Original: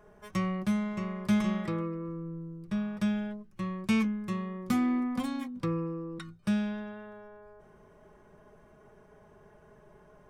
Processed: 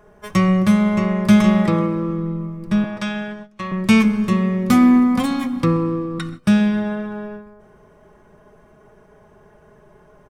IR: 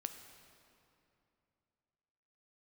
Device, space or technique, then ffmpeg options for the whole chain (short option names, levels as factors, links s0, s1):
keyed gated reverb: -filter_complex "[0:a]asettb=1/sr,asplit=3[s0][s1][s2];[s0]atrim=end=2.844[s3];[s1]atrim=start=2.84:end=3.72,asetpts=PTS-STARTPTS,afade=t=in:d=0.004:c=qsin,afade=t=out:st=0.876:d=0.004:c=qsin,acrossover=split=490 7900:gain=0.224 1 0.178[s4][s5][s6];[s4][s5][s6]amix=inputs=3:normalize=0[s7];[s2]atrim=start=3.716[s8];[s3][s7]acrossfade=d=0.004:c1=hsin:c2=qsin[s9];[s9][s8]acrossfade=d=0.004:c1=qsin:c2=hsin,asplit=2[s10][s11];[s11]adelay=129,lowpass=f=1200:p=1,volume=0.178,asplit=2[s12][s13];[s13]adelay=129,lowpass=f=1200:p=1,volume=0.49,asplit=2[s14][s15];[s15]adelay=129,lowpass=f=1200:p=1,volume=0.49,asplit=2[s16][s17];[s17]adelay=129,lowpass=f=1200:p=1,volume=0.49,asplit=2[s18][s19];[s19]adelay=129,lowpass=f=1200:p=1,volume=0.49[s20];[s10][s12][s14][s16][s18][s20]amix=inputs=6:normalize=0,asplit=3[s21][s22][s23];[1:a]atrim=start_sample=2205[s24];[s22][s24]afir=irnorm=-1:irlink=0[s25];[s23]apad=whole_len=482273[s26];[s25][s26]sidechaingate=range=0.0794:threshold=0.00316:ratio=16:detection=peak,volume=2[s27];[s21][s27]amix=inputs=2:normalize=0,volume=2"